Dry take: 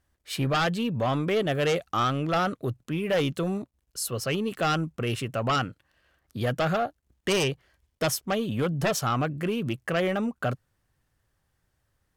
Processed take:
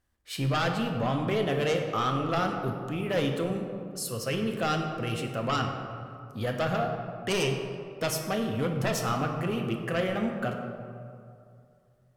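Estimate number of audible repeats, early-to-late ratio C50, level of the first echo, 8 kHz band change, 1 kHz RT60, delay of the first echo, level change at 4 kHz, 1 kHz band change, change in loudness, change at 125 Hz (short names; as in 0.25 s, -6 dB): none, 4.5 dB, none, -3.0 dB, 2.4 s, none, -2.5 dB, -2.0 dB, -2.0 dB, -1.5 dB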